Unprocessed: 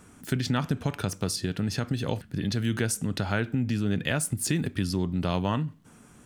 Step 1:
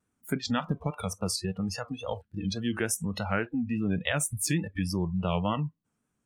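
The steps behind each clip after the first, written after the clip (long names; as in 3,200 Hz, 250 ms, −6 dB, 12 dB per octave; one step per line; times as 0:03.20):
noise reduction from a noise print of the clip's start 26 dB
pitch vibrato 3.5 Hz 74 cents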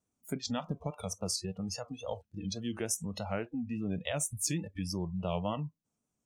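graphic EQ with 15 bands 630 Hz +5 dB, 1,600 Hz −8 dB, 6,300 Hz +8 dB
level −6.5 dB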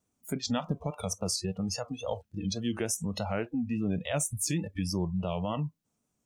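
brickwall limiter −25 dBFS, peak gain reduction 7 dB
level +5 dB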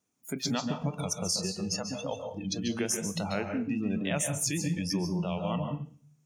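convolution reverb RT60 0.45 s, pre-delay 133 ms, DRR 5 dB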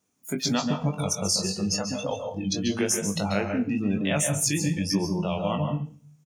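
double-tracking delay 20 ms −6.5 dB
level +4.5 dB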